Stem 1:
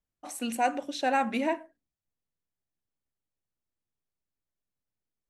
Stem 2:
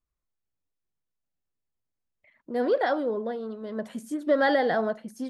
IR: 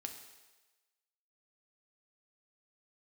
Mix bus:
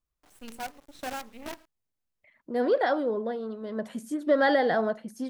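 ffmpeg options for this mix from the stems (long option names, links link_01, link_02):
-filter_complex "[0:a]lowshelf=frequency=150:gain=12,tremolo=f=1.9:d=0.61,acrusher=bits=5:dc=4:mix=0:aa=0.000001,volume=-10dB[link_01];[1:a]volume=0dB[link_02];[link_01][link_02]amix=inputs=2:normalize=0"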